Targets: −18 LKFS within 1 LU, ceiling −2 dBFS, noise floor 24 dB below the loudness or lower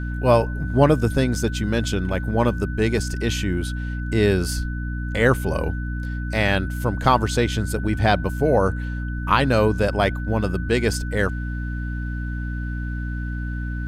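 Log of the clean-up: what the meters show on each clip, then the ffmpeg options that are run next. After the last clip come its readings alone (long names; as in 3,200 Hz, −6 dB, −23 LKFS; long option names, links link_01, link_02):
mains hum 60 Hz; hum harmonics up to 300 Hz; level of the hum −25 dBFS; interfering tone 1,500 Hz; level of the tone −36 dBFS; integrated loudness −22.5 LKFS; sample peak −3.5 dBFS; target loudness −18.0 LKFS
→ -af "bandreject=frequency=60:width_type=h:width=4,bandreject=frequency=120:width_type=h:width=4,bandreject=frequency=180:width_type=h:width=4,bandreject=frequency=240:width_type=h:width=4,bandreject=frequency=300:width_type=h:width=4"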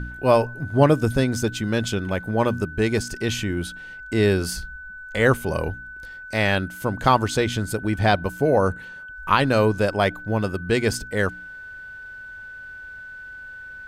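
mains hum none found; interfering tone 1,500 Hz; level of the tone −36 dBFS
→ -af "bandreject=frequency=1500:width=30"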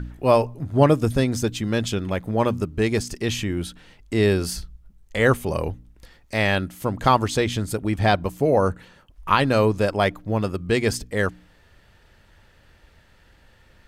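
interfering tone none found; integrated loudness −22.5 LKFS; sample peak −4.0 dBFS; target loudness −18.0 LKFS
→ -af "volume=4.5dB,alimiter=limit=-2dB:level=0:latency=1"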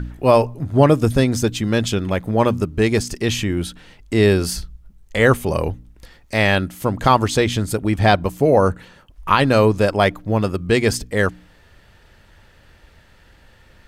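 integrated loudness −18.5 LKFS; sample peak −2.0 dBFS; background noise floor −51 dBFS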